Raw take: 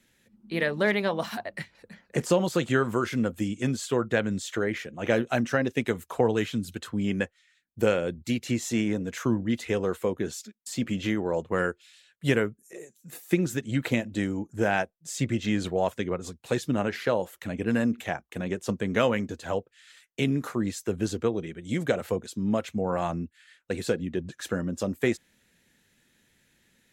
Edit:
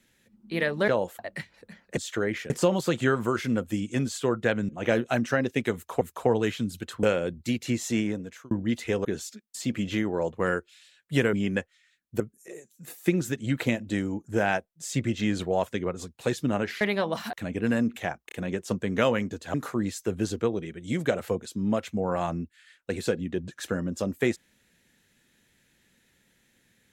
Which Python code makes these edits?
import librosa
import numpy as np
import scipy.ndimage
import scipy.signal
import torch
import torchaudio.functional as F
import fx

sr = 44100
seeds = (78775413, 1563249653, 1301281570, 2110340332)

y = fx.edit(x, sr, fx.swap(start_s=0.88, length_s=0.52, other_s=17.06, other_length_s=0.31),
    fx.move(start_s=4.37, length_s=0.53, to_s=2.18),
    fx.repeat(start_s=5.95, length_s=0.27, count=2),
    fx.move(start_s=6.97, length_s=0.87, to_s=12.45),
    fx.fade_out_span(start_s=8.8, length_s=0.52),
    fx.cut(start_s=9.86, length_s=0.31),
    fx.stutter(start_s=18.3, slice_s=0.03, count=3),
    fx.cut(start_s=19.52, length_s=0.83), tone=tone)